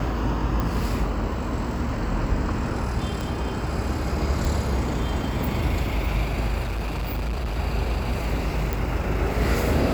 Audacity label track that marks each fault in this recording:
0.600000	0.600000	pop
3.210000	3.210000	pop
4.450000	4.450000	pop
6.630000	7.580000	clipped -23.5 dBFS
8.730000	8.730000	pop

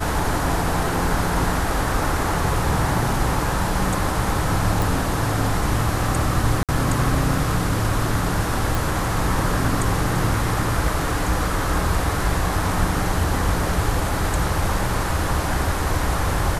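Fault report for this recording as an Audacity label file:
4.820000	4.820000	pop
6.630000	6.690000	dropout 57 ms
8.750000	8.750000	pop

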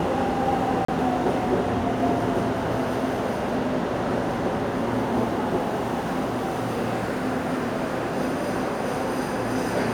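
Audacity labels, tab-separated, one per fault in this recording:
0.850000	0.880000	dropout 34 ms

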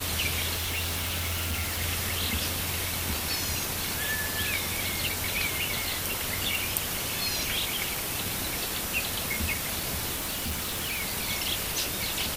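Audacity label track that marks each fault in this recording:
0.540000	1.820000	clipped -26.5 dBFS
6.550000	6.550000	pop
10.150000	11.030000	clipped -27 dBFS

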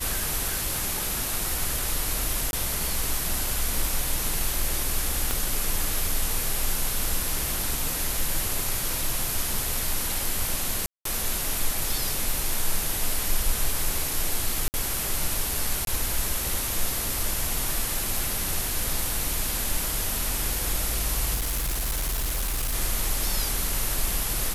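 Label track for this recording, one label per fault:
2.510000	2.530000	dropout 21 ms
5.310000	5.310000	pop -10 dBFS
10.860000	11.050000	dropout 193 ms
14.680000	14.740000	dropout 59 ms
15.850000	15.870000	dropout 22 ms
21.340000	22.750000	clipped -23.5 dBFS

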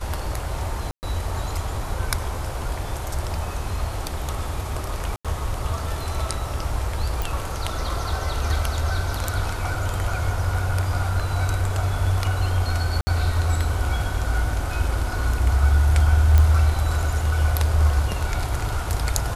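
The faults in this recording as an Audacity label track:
0.910000	1.030000	dropout 119 ms
5.160000	5.250000	dropout 86 ms
7.220000	7.220000	pop
13.010000	13.070000	dropout 60 ms
16.380000	16.380000	pop -7 dBFS

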